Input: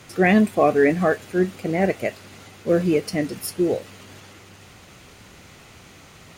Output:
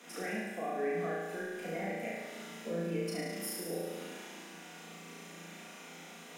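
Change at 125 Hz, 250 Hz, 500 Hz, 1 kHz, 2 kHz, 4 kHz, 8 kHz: −16.5, −19.0, −16.0, −15.0, −14.0, −8.5, −7.0 decibels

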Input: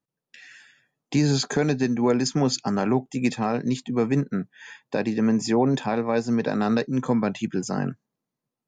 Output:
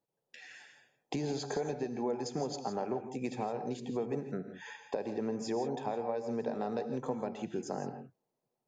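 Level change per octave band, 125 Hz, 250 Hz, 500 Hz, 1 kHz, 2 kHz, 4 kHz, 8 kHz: −16.5, −15.0, −9.0, −9.0, −15.0, −15.0, −14.5 decibels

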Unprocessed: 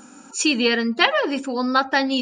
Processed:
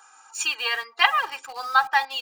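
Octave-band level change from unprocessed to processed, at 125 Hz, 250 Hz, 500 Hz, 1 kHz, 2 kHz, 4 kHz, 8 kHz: can't be measured, below −30 dB, −17.5 dB, +1.0 dB, −1.0 dB, −3.0 dB, −4.5 dB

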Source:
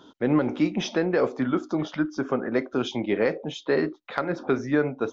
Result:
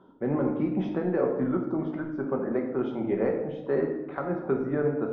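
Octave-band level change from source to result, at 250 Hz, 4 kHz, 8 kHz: −2.5 dB, below −20 dB, can't be measured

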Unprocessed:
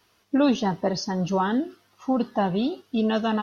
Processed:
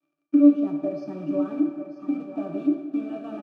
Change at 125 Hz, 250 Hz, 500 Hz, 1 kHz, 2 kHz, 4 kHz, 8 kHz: −11.5 dB, +2.5 dB, −4.5 dB, −16.0 dB, below −15 dB, below −20 dB, can't be measured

